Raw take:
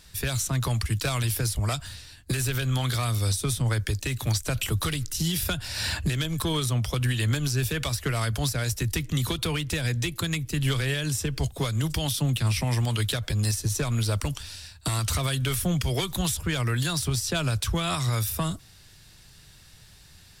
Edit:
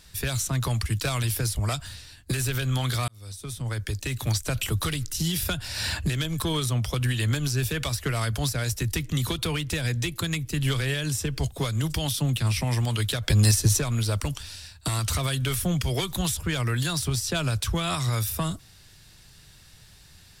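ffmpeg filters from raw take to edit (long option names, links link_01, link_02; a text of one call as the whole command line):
ffmpeg -i in.wav -filter_complex "[0:a]asplit=4[link_01][link_02][link_03][link_04];[link_01]atrim=end=3.08,asetpts=PTS-STARTPTS,afade=type=out:start_time=3.076:duration=0.004:curve=hsin[link_05];[link_02]atrim=start=3.08:end=13.282,asetpts=PTS-STARTPTS,afade=type=in:duration=1.12[link_06];[link_03]atrim=start=13.278:end=13.792,asetpts=PTS-STARTPTS,volume=6.5dB[link_07];[link_04]atrim=start=13.788[link_08];[link_05][link_06]concat=n=2:v=0:a=1[link_09];[link_09][link_07]acrossfade=duration=0.004:curve1=hsin:curve2=hsin[link_10];[link_10][link_08]acrossfade=duration=0.004:curve1=hsin:curve2=hsin" out.wav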